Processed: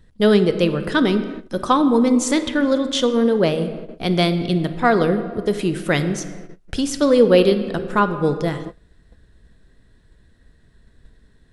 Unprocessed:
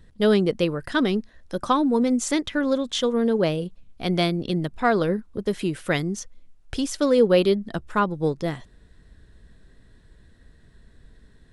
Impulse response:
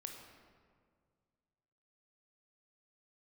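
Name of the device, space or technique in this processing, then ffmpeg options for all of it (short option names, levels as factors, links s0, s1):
keyed gated reverb: -filter_complex "[0:a]asplit=3[s0][s1][s2];[1:a]atrim=start_sample=2205[s3];[s1][s3]afir=irnorm=-1:irlink=0[s4];[s2]apad=whole_len=508240[s5];[s4][s5]sidechaingate=range=0.0224:threshold=0.00631:ratio=16:detection=peak,volume=1.5[s6];[s0][s6]amix=inputs=2:normalize=0,volume=0.891"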